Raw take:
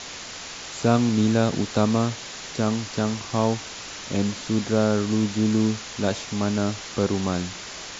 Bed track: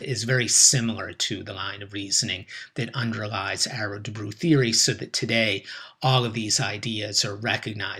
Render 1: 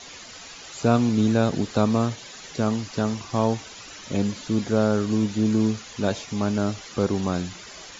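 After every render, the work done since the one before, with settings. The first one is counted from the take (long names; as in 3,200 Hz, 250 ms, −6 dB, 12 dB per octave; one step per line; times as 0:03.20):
broadband denoise 10 dB, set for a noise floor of −37 dBFS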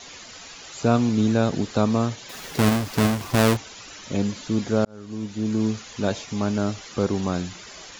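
0:02.29–0:03.57: each half-wave held at its own peak
0:04.85–0:05.78: fade in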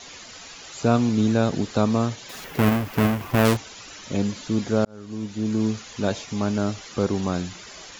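0:02.44–0:03.45: flat-topped bell 6,000 Hz −8.5 dB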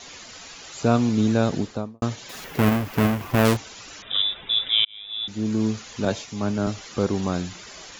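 0:01.52–0:02.02: fade out and dull
0:04.02–0:05.28: voice inversion scrambler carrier 3,700 Hz
0:06.05–0:06.67: multiband upward and downward expander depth 70%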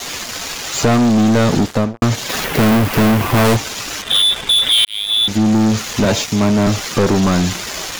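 leveller curve on the samples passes 5
downward compressor 2.5 to 1, threshold −12 dBFS, peak gain reduction 3 dB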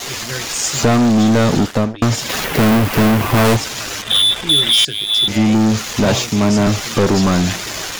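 mix in bed track −5.5 dB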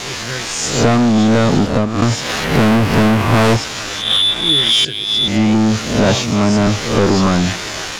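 peak hold with a rise ahead of every peak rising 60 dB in 0.61 s
high-frequency loss of the air 50 metres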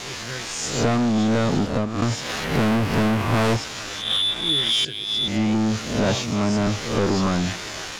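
level −8 dB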